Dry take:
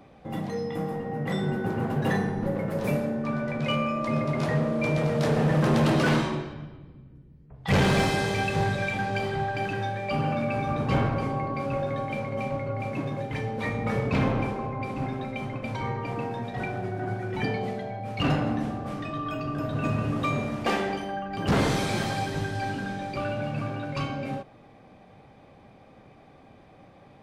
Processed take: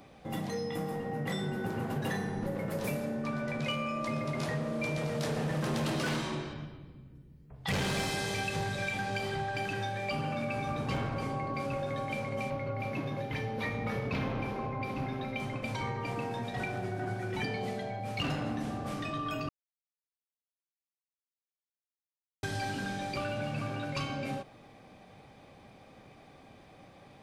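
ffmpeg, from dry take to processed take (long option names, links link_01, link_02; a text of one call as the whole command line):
ffmpeg -i in.wav -filter_complex "[0:a]asettb=1/sr,asplit=3[link_01][link_02][link_03];[link_01]atrim=end=12.504[link_04];[link_02]atrim=start=12.5:end=15.4,asetpts=PTS-STARTPTS,afade=type=in:duration=0.004:curve=qsin,afade=type=out:start_time=2.896:duration=0.004:curve=qsin,equalizer=frequency=8000:width_type=o:width=0.71:gain=-11.5[link_05];[link_03]atrim=start=15.396[link_06];[link_04][link_05]acrossfade=duration=0.004:curve1=hsin:curve2=qsin[link_07];[link_07][link_06]acrossfade=duration=0.004:curve1=qsin:curve2=hsin,asplit=3[link_08][link_09][link_10];[link_08]atrim=end=19.49,asetpts=PTS-STARTPTS,afade=type=out:start_time=19.486:duration=0.004:curve=hsin[link_11];[link_09]atrim=start=19.49:end=22.43,asetpts=PTS-STARTPTS,volume=0[link_12];[link_10]atrim=start=22.43,asetpts=PTS-STARTPTS,afade=type=in:duration=0.004:curve=hsin[link_13];[link_11][link_12][link_13]concat=n=3:v=0:a=1,highshelf=frequency=2900:gain=10,acompressor=threshold=-28dB:ratio=4,volume=-3dB" out.wav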